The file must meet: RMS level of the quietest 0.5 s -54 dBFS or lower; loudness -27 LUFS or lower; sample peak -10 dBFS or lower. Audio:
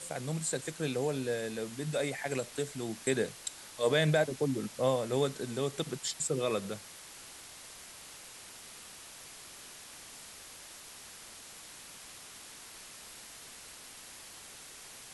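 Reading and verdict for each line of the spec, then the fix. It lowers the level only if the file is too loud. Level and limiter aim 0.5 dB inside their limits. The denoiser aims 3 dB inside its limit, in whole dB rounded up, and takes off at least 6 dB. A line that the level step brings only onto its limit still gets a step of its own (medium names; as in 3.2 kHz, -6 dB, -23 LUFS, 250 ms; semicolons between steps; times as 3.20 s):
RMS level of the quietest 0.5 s -50 dBFS: fail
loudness -33.0 LUFS: pass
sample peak -16.0 dBFS: pass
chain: noise reduction 7 dB, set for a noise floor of -50 dBFS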